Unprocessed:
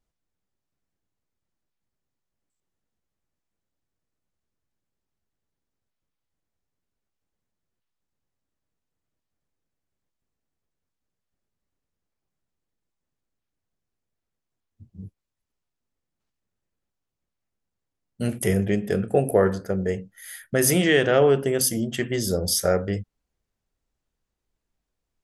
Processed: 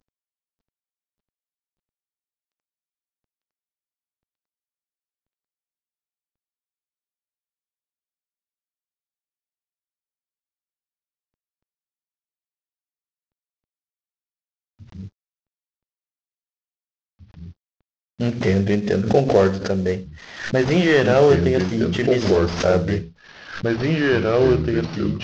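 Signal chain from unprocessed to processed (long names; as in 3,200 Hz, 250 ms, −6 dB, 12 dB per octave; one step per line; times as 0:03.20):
variable-slope delta modulation 32 kbit/s
delay with pitch and tempo change per echo 590 ms, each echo −2 semitones, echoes 3
background raised ahead of every attack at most 110 dB per second
level +4 dB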